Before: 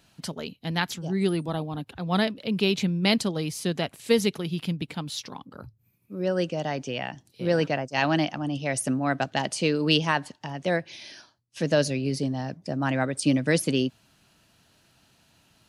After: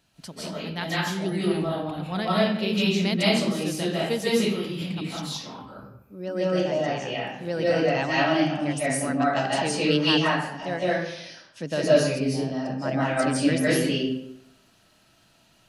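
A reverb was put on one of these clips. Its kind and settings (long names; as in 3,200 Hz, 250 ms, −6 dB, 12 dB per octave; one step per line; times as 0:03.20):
comb and all-pass reverb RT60 0.77 s, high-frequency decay 0.7×, pre-delay 120 ms, DRR −8.5 dB
level −6.5 dB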